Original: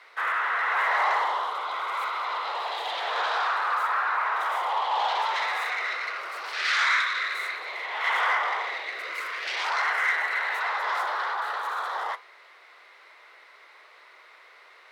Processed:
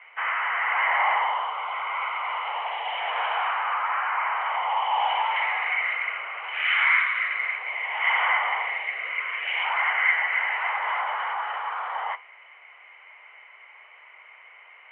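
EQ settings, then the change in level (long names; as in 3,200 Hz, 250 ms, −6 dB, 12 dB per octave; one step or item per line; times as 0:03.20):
high-pass filter 280 Hz
Chebyshev low-pass with heavy ripple 3,100 Hz, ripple 9 dB
spectral tilt +4 dB per octave
+4.0 dB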